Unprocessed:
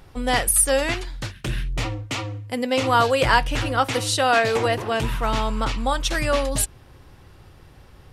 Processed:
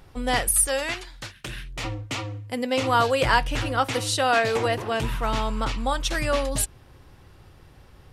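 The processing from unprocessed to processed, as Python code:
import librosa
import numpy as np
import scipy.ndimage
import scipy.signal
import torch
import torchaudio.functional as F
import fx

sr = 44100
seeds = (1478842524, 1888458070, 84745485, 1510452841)

y = fx.low_shelf(x, sr, hz=430.0, db=-9.5, at=(0.67, 1.84))
y = F.gain(torch.from_numpy(y), -2.5).numpy()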